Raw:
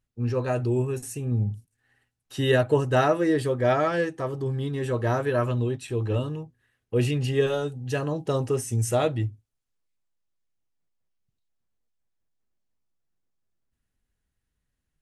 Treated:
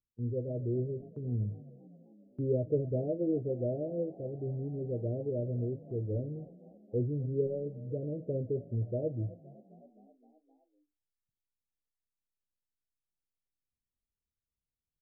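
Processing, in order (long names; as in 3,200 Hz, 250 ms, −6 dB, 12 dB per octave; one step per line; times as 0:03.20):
Butterworth low-pass 600 Hz 72 dB per octave
noise gate −44 dBFS, range −8 dB
echo with shifted repeats 260 ms, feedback 64%, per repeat +32 Hz, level −20 dB
level −8 dB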